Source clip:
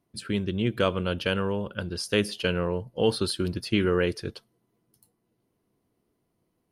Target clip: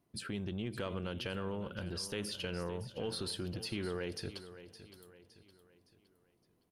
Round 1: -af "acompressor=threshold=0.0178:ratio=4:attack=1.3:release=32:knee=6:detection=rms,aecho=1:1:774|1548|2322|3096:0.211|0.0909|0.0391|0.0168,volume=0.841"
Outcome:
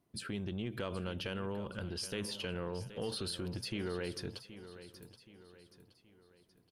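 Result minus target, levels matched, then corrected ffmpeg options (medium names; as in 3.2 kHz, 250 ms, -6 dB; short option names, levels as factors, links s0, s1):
echo 210 ms late
-af "acompressor=threshold=0.0178:ratio=4:attack=1.3:release=32:knee=6:detection=rms,aecho=1:1:564|1128|1692|2256:0.211|0.0909|0.0391|0.0168,volume=0.841"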